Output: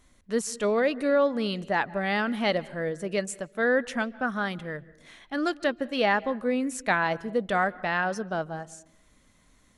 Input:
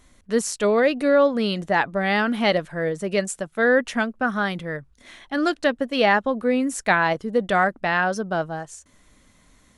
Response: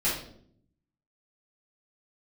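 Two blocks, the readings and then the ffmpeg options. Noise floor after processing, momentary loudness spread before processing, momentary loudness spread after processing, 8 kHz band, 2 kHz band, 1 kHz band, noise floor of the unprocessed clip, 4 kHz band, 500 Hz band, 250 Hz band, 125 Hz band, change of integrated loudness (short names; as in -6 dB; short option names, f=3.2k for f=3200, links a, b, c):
-62 dBFS, 8 LU, 8 LU, -5.5 dB, -5.5 dB, -5.5 dB, -58 dBFS, -5.5 dB, -5.5 dB, -5.5 dB, -5.5 dB, -5.5 dB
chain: -filter_complex "[0:a]asplit=2[a][b];[1:a]atrim=start_sample=2205,lowpass=4.1k,adelay=137[c];[b][c]afir=irnorm=-1:irlink=0,volume=-30.5dB[d];[a][d]amix=inputs=2:normalize=0,volume=-5.5dB"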